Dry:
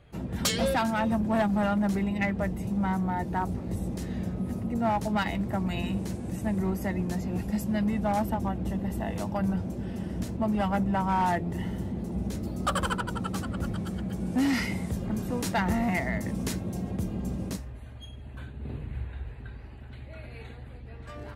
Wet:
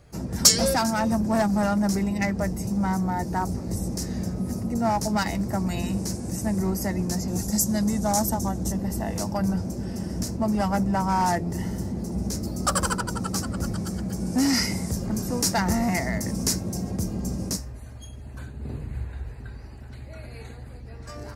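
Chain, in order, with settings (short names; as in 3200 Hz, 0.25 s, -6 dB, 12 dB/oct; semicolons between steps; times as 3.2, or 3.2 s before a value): resonant high shelf 4200 Hz +8 dB, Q 3, from 7.28 s +14 dB, from 8.72 s +7.5 dB; gain +3 dB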